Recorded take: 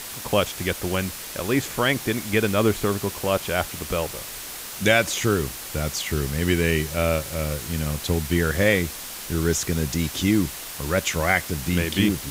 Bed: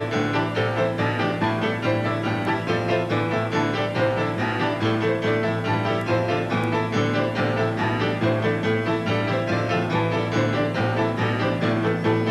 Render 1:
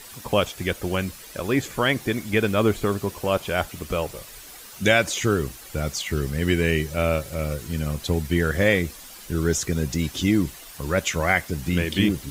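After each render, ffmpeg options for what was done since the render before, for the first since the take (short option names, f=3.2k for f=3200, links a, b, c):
-af "afftdn=nr=10:nf=-36"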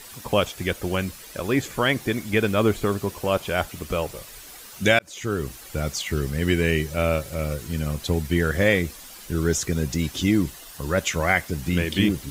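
-filter_complex "[0:a]asettb=1/sr,asplit=3[a][b][c];[a]atrim=end=10.504[d];[b]atrim=start=10.5:end=11.01,asetpts=PTS-STARTPTS,afade=t=in:d=0.004:c=qsin,afade=t=out:st=0.506:d=0.004:c=qsin,bandreject=f=2.3k:w=8.1[e];[c]atrim=start=11.006[f];[d][e]acrossfade=d=0.004:c1=hsin:c2=qsin[g];[g][f]acrossfade=d=0.004:c1=qsin:c2=hsin,asplit=2[h][i];[h]atrim=end=4.99,asetpts=PTS-STARTPTS,afade=t=out:st=4.986:d=0.004:c=hsin[j];[i]atrim=start=4.99,asetpts=PTS-STARTPTS,afade=t=in:d=0.56[k];[j][k]concat=n=2:v=0:a=1"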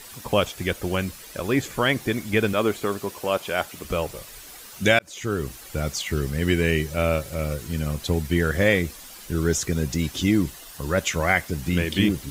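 -filter_complex "[0:a]asettb=1/sr,asplit=3[a][b][c];[a]atrim=end=2.534[d];[b]atrim=start=2.53:end=3.85,asetpts=PTS-STARTPTS,afade=t=in:d=0.004:c=qsin,afade=t=out:st=1.316:d=0.004:c=qsin,highpass=f=290:p=1[e];[c]atrim=start=3.846[f];[d][e]acrossfade=d=0.004:c1=hsin:c2=qsin[g];[g][f]acrossfade=d=0.004:c1=qsin:c2=hsin"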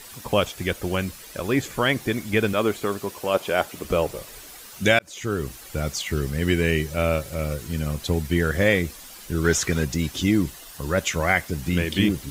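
-filter_complex "[0:a]asettb=1/sr,asplit=3[a][b][c];[a]atrim=end=3.344[d];[b]atrim=start=3.34:end=4.47,asetpts=PTS-STARTPTS,afade=t=in:d=0.004:c=qsin,afade=t=out:st=1.126:d=0.004:c=qsin,equalizer=f=410:w=0.56:g=5[e];[c]atrim=start=4.466[f];[d][e]acrossfade=d=0.004:c1=hsin:c2=qsin[g];[g][f]acrossfade=d=0.004:c1=qsin:c2=hsin,asettb=1/sr,asplit=3[h][i][j];[h]atrim=end=9.444[k];[i]atrim=start=9.44:end=9.85,asetpts=PTS-STARTPTS,afade=t=in:d=0.004:c=qsin,afade=t=out:st=0.406:d=0.004:c=qsin,equalizer=f=1.7k:w=0.47:g=8.5[l];[j]atrim=start=9.846[m];[k][l]acrossfade=d=0.004:c1=hsin:c2=qsin[n];[n][m]acrossfade=d=0.004:c1=qsin:c2=hsin"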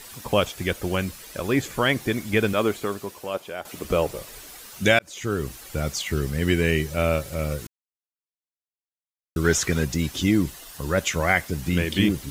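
-filter_complex "[0:a]asplit=4[a][b][c][d];[a]atrim=end=3.65,asetpts=PTS-STARTPTS,afade=t=out:st=2.61:d=1.04:silence=0.199526[e];[b]atrim=start=3.65:end=7.67,asetpts=PTS-STARTPTS,afade=t=in:d=0.004:c=hsin:silence=0.199526,afade=t=out:st=4.016:d=0.004:c=hsin[f];[c]atrim=start=7.67:end=9.36,asetpts=PTS-STARTPTS,volume=0[g];[d]atrim=start=9.36,asetpts=PTS-STARTPTS,afade=t=in:d=0.004:c=hsin[h];[e][f][g][h]concat=n=4:v=0:a=1"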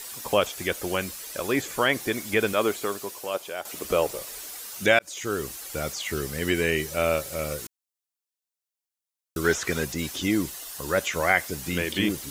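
-filter_complex "[0:a]bass=f=250:g=-10,treble=f=4k:g=7,acrossover=split=2800[a][b];[b]acompressor=threshold=-33dB:ratio=4:attack=1:release=60[c];[a][c]amix=inputs=2:normalize=0"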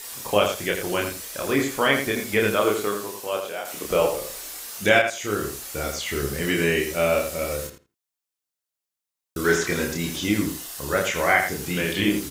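-filter_complex "[0:a]asplit=2[a][b];[b]adelay=29,volume=-2dB[c];[a][c]amix=inputs=2:normalize=0,asplit=2[d][e];[e]adelay=83,lowpass=f=3.2k:p=1,volume=-6.5dB,asplit=2[f][g];[g]adelay=83,lowpass=f=3.2k:p=1,volume=0.17,asplit=2[h][i];[i]adelay=83,lowpass=f=3.2k:p=1,volume=0.17[j];[d][f][h][j]amix=inputs=4:normalize=0"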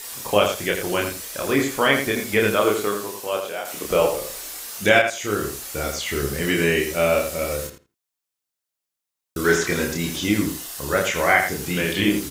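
-af "volume=2dB,alimiter=limit=-2dB:level=0:latency=1"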